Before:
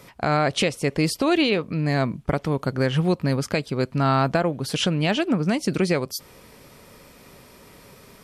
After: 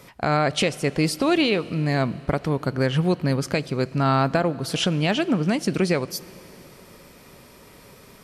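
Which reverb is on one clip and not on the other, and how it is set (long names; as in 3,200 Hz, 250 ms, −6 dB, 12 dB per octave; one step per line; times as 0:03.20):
four-comb reverb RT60 3.7 s, combs from 26 ms, DRR 18.5 dB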